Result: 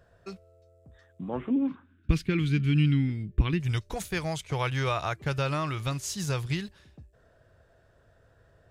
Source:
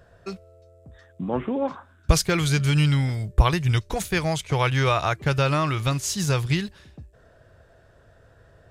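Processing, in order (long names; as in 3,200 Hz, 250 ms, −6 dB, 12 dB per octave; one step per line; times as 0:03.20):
0:01.50–0:03.60: drawn EQ curve 110 Hz 0 dB, 280 Hz +11 dB, 630 Hz −16 dB, 2,600 Hz +2 dB, 6,200 Hz −16 dB
level −7 dB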